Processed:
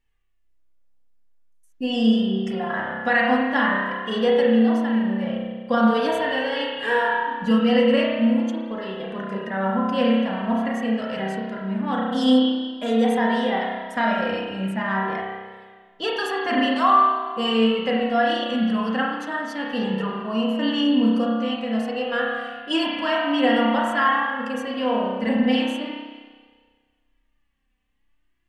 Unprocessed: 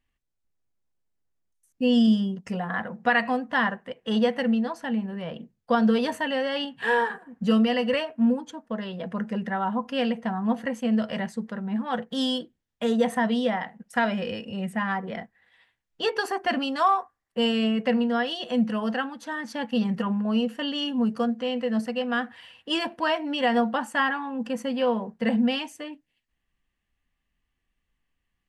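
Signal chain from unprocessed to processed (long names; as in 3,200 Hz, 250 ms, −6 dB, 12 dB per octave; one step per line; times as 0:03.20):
spring reverb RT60 1.6 s, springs 31 ms, chirp 25 ms, DRR −3 dB
flanger 0.45 Hz, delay 2.2 ms, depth 1.8 ms, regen +37%
level +3.5 dB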